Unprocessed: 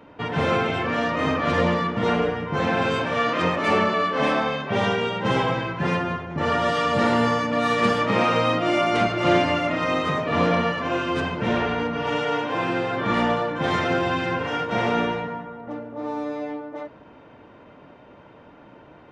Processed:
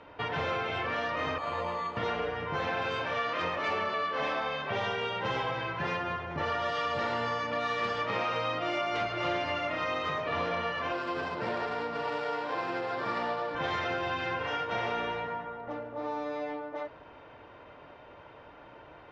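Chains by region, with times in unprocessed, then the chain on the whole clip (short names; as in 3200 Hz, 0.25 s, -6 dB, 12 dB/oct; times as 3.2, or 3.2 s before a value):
1.38–1.97 rippled Chebyshev low-pass 3600 Hz, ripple 9 dB + decimation joined by straight lines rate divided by 8×
10.92–13.55 median filter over 15 samples + HPF 150 Hz + bell 6300 Hz -14 dB 0.27 oct
whole clip: LPF 5900 Hz 24 dB/oct; bell 210 Hz -12.5 dB 1.4 oct; compressor 3:1, threshold -31 dBFS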